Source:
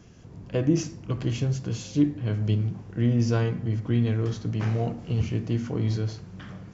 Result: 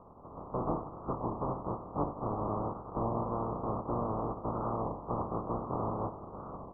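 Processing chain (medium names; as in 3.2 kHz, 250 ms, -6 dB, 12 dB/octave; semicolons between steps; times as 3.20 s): spectral contrast reduction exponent 0.15; in parallel at -7 dB: integer overflow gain 20.5 dB; on the sum: careless resampling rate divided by 3×, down none, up zero stuff; compression 2:1, threshold -21 dBFS, peak gain reduction 7.5 dB; steep low-pass 1.2 kHz 96 dB/octave; warped record 33 1/3 rpm, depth 100 cents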